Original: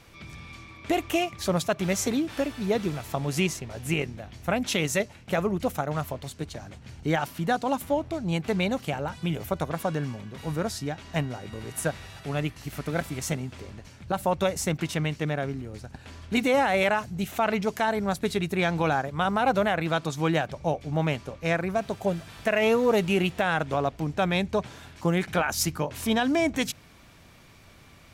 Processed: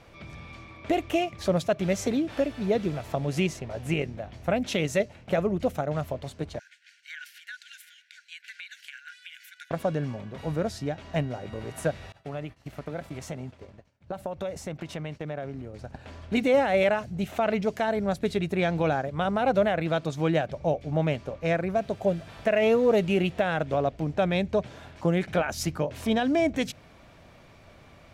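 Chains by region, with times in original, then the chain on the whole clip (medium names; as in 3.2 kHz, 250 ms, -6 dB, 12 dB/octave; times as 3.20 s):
6.59–9.71 s: brick-wall FIR high-pass 1.4 kHz + compression, threshold -35 dBFS
12.12–15.79 s: expander -35 dBFS + high-pass 42 Hz + compression 4:1, threshold -33 dBFS
whole clip: dynamic bell 950 Hz, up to -7 dB, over -39 dBFS, Q 1; low-pass 3.2 kHz 6 dB/octave; peaking EQ 610 Hz +7 dB 0.72 oct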